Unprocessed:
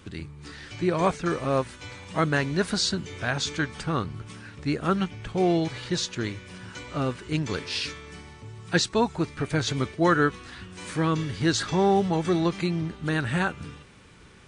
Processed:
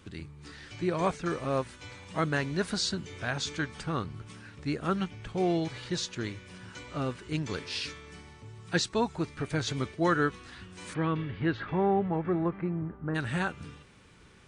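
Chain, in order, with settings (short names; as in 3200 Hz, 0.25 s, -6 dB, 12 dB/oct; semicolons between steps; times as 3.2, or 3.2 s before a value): 10.93–13.14 LPF 3400 Hz -> 1400 Hz 24 dB/oct; gain -5 dB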